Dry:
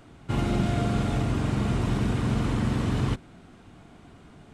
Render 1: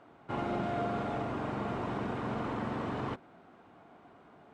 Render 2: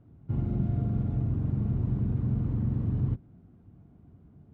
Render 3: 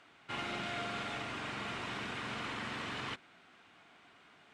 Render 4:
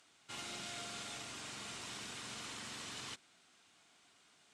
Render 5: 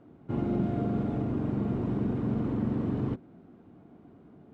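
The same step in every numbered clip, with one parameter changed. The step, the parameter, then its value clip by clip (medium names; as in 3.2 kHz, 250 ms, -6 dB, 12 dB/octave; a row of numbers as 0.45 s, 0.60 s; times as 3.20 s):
band-pass filter, frequency: 800 Hz, 100 Hz, 2.3 kHz, 6.4 kHz, 300 Hz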